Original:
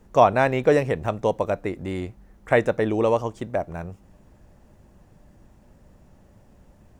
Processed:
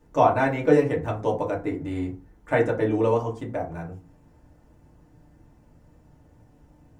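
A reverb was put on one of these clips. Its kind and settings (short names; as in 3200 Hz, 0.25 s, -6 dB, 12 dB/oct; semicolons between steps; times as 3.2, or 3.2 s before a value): FDN reverb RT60 0.34 s, low-frequency decay 1.35×, high-frequency decay 0.5×, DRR -3.5 dB; gain -8 dB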